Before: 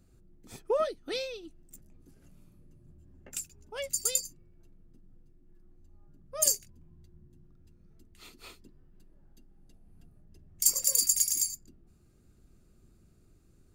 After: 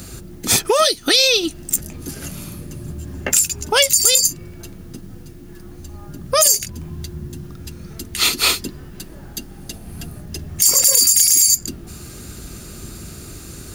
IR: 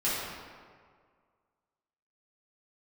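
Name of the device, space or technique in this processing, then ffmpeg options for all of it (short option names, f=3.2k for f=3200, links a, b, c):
mastering chain: -filter_complex "[0:a]highpass=42,equalizer=f=2.4k:t=o:w=0.77:g=-1.5,acrossover=split=1200|3500[a][b][c];[a]acompressor=threshold=-44dB:ratio=4[d];[b]acompressor=threshold=-53dB:ratio=4[e];[c]acompressor=threshold=-36dB:ratio=4[f];[d][e][f]amix=inputs=3:normalize=0,acompressor=threshold=-48dB:ratio=1.5,asoftclip=type=tanh:threshold=-28dB,tiltshelf=f=1.2k:g=-6,alimiter=level_in=34.5dB:limit=-1dB:release=50:level=0:latency=1,bandreject=f=7.8k:w=17,volume=-1.5dB"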